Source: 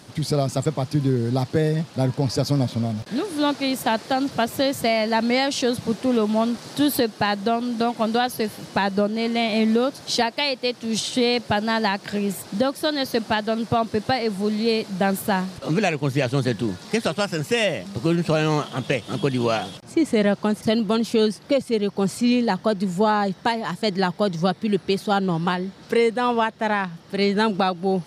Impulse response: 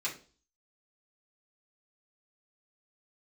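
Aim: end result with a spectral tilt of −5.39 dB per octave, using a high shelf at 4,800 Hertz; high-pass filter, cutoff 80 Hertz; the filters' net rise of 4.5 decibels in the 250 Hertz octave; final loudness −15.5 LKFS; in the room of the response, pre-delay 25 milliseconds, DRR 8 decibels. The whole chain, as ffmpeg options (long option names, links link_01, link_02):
-filter_complex "[0:a]highpass=80,equalizer=frequency=250:width_type=o:gain=5.5,highshelf=frequency=4800:gain=-5.5,asplit=2[link_01][link_02];[1:a]atrim=start_sample=2205,adelay=25[link_03];[link_02][link_03]afir=irnorm=-1:irlink=0,volume=-12dB[link_04];[link_01][link_04]amix=inputs=2:normalize=0,volume=4.5dB"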